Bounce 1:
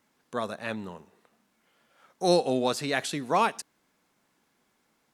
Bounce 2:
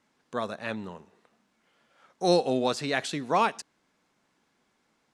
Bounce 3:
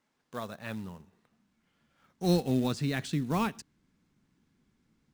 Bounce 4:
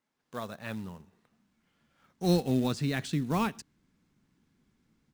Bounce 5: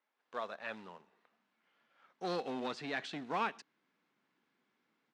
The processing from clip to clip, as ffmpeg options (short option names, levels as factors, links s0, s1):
-af "lowpass=7700"
-af "acrusher=bits=4:mode=log:mix=0:aa=0.000001,asubboost=boost=11.5:cutoff=200,volume=0.473"
-af "dynaudnorm=f=170:g=3:m=2.24,volume=0.473"
-af "asoftclip=type=tanh:threshold=0.0668,highpass=510,lowpass=3300,volume=1.12"